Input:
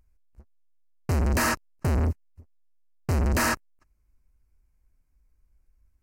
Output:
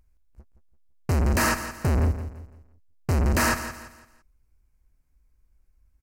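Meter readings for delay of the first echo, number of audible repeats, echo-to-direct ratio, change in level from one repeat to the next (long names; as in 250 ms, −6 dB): 169 ms, 3, −11.0 dB, −9.0 dB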